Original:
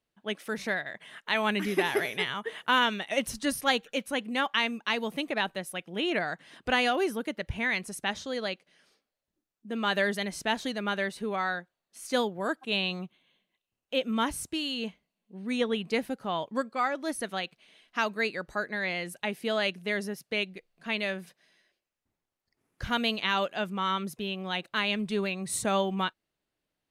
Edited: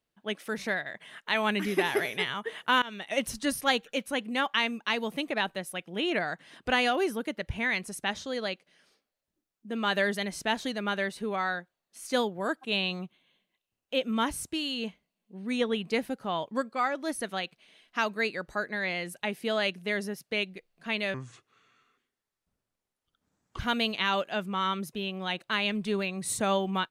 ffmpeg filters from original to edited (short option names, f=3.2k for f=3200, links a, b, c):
-filter_complex "[0:a]asplit=4[a][b][c][d];[a]atrim=end=2.82,asetpts=PTS-STARTPTS,afade=t=out:st=2.816:d=0.004:c=hsin:silence=0.0630957[e];[b]atrim=start=2.82:end=21.144,asetpts=PTS-STARTPTS,afade=t=in:d=0.46:c=qsin:silence=0.0630957[f];[c]atrim=start=21.14:end=22.83,asetpts=PTS-STARTPTS,asetrate=30429,aresample=44100,atrim=end_sample=108013,asetpts=PTS-STARTPTS[g];[d]atrim=start=22.826[h];[e][f]concat=n=2:v=0:a=1[i];[i][g]acrossfade=d=0.004:c1=hsin:c2=hsin[j];[j][h]acrossfade=d=0.004:c1=hsin:c2=hsin"